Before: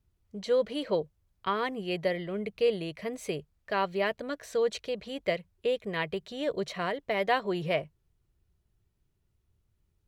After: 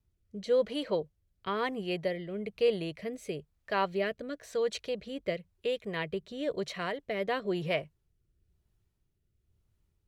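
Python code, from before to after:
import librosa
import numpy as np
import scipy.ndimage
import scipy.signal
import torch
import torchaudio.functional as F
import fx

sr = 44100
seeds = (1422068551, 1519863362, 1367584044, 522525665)

y = fx.rotary(x, sr, hz=1.0)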